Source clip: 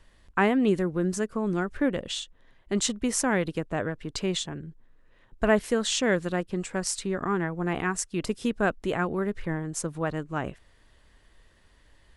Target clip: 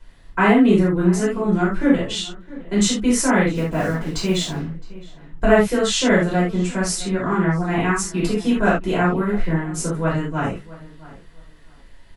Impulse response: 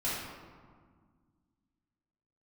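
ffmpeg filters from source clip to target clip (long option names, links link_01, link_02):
-filter_complex "[0:a]acontrast=32,aeval=exprs='0.631*(cos(1*acos(clip(val(0)/0.631,-1,1)))-cos(1*PI/2))+0.0316*(cos(3*acos(clip(val(0)/0.631,-1,1)))-cos(3*PI/2))':channel_layout=same,asplit=3[link_01][link_02][link_03];[link_01]afade=type=out:start_time=3.5:duration=0.02[link_04];[link_02]acrusher=bits=6:mix=0:aa=0.5,afade=type=in:start_time=3.5:duration=0.02,afade=type=out:start_time=4.65:duration=0.02[link_05];[link_03]afade=type=in:start_time=4.65:duration=0.02[link_06];[link_04][link_05][link_06]amix=inputs=3:normalize=0,asplit=2[link_07][link_08];[link_08]adelay=664,lowpass=frequency=2600:poles=1,volume=-19dB,asplit=2[link_09][link_10];[link_10]adelay=664,lowpass=frequency=2600:poles=1,volume=0.22[link_11];[link_07][link_09][link_11]amix=inputs=3:normalize=0[link_12];[1:a]atrim=start_sample=2205,atrim=end_sample=3969[link_13];[link_12][link_13]afir=irnorm=-1:irlink=0,volume=-1dB"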